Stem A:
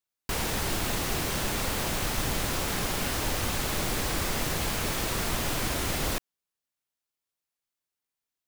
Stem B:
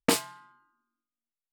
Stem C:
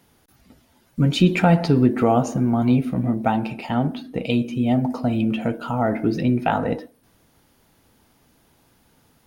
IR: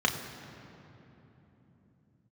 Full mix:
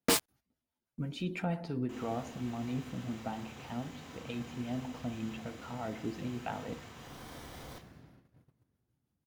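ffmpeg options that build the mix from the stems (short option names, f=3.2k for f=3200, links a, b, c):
-filter_complex "[0:a]alimiter=limit=-22.5dB:level=0:latency=1:release=14,adelay=1600,volume=-19.5dB,asplit=2[a][b];[b]volume=-9dB[c];[1:a]acrusher=bits=4:mix=0:aa=0.000001,asoftclip=type=tanh:threshold=-22.5dB,volume=2dB[d];[2:a]acrossover=split=630[e][f];[e]aeval=exprs='val(0)*(1-0.5/2+0.5/2*cos(2*PI*6.1*n/s))':c=same[g];[f]aeval=exprs='val(0)*(1-0.5/2-0.5/2*cos(2*PI*6.1*n/s))':c=same[h];[g][h]amix=inputs=2:normalize=0,volume=-16dB,asplit=2[i][j];[j]apad=whole_len=444287[k];[a][k]sidechaincompress=threshold=-55dB:ratio=8:attack=49:release=374[l];[3:a]atrim=start_sample=2205[m];[c][m]afir=irnorm=-1:irlink=0[n];[l][d][i][n]amix=inputs=4:normalize=0,agate=range=-14dB:threshold=-57dB:ratio=16:detection=peak"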